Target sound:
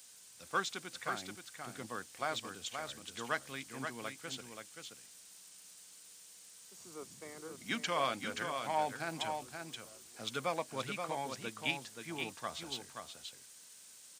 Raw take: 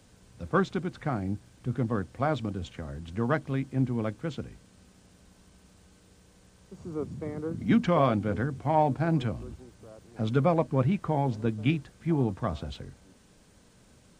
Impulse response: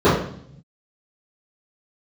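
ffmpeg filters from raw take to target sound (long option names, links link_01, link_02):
-af "aderivative,aecho=1:1:527:0.501,volume=10dB"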